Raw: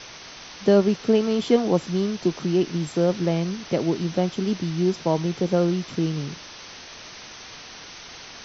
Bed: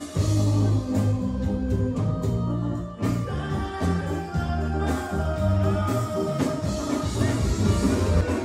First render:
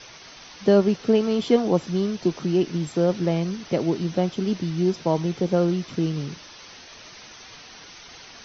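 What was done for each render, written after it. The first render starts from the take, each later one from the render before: noise reduction 6 dB, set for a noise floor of -42 dBFS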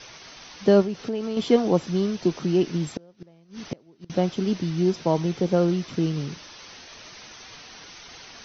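0.82–1.37 s: compression 3:1, threshold -27 dBFS; 2.83–4.10 s: inverted gate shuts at -17 dBFS, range -31 dB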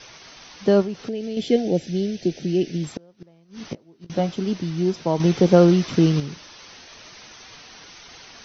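1.09–2.84 s: Butterworth band-stop 1.1 kHz, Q 1; 3.59–4.36 s: doubling 18 ms -7.5 dB; 5.20–6.20 s: gain +7.5 dB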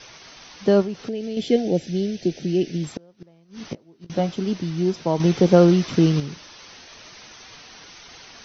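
no audible change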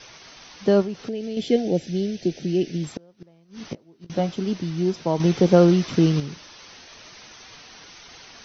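trim -1 dB

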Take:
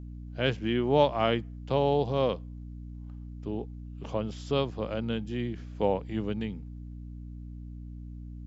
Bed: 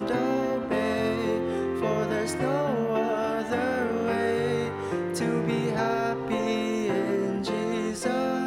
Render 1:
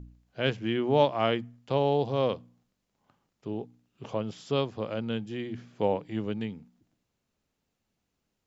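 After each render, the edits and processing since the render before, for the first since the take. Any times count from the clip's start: de-hum 60 Hz, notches 5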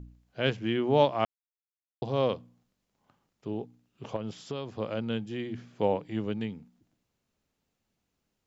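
1.25–2.02 s: mute; 4.16–4.79 s: compression, threshold -30 dBFS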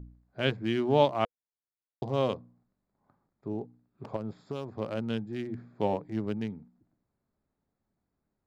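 local Wiener filter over 15 samples; band-stop 490 Hz, Q 12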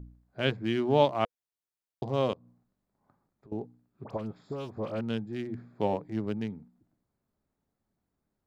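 2.33–3.52 s: compression 5:1, threshold -53 dBFS; 4.04–5.01 s: phase dispersion highs, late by 57 ms, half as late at 1.6 kHz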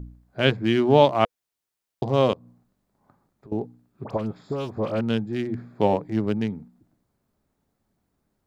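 trim +8 dB; peak limiter -3 dBFS, peak gain reduction 2 dB

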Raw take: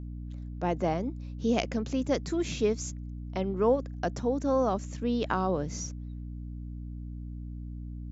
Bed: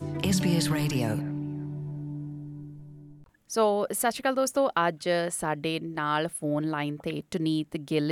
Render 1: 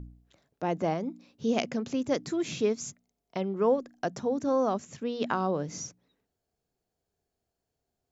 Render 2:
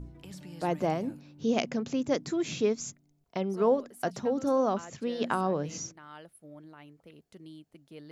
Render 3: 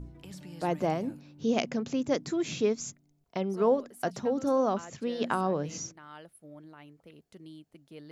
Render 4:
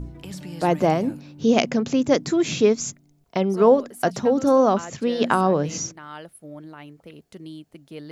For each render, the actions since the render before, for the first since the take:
de-hum 60 Hz, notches 5
add bed -21 dB
no audible change
trim +9.5 dB

